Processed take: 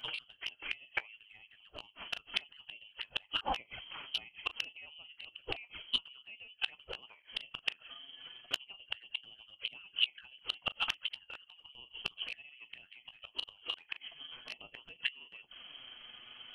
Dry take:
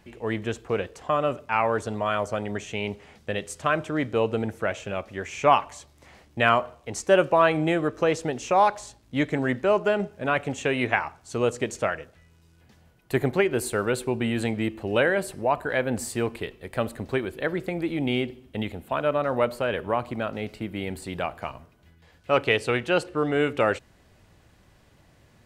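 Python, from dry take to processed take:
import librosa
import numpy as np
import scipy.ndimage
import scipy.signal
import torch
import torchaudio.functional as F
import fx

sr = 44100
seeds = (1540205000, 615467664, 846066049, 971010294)

y = fx.freq_invert(x, sr, carrier_hz=3200)
y = fx.env_flanger(y, sr, rest_ms=8.9, full_db=-21.0)
y = fx.gate_flip(y, sr, shuts_db=-24.0, range_db=-36)
y = fx.doubler(y, sr, ms=40.0, db=-13.5)
y = fx.stretch_grains(y, sr, factor=0.65, grain_ms=88.0)
y = y * librosa.db_to_amplitude(9.0)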